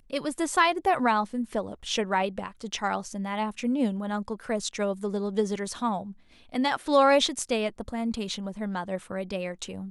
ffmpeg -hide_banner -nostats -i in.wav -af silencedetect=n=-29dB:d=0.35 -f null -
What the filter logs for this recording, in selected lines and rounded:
silence_start: 6.01
silence_end: 6.54 | silence_duration: 0.53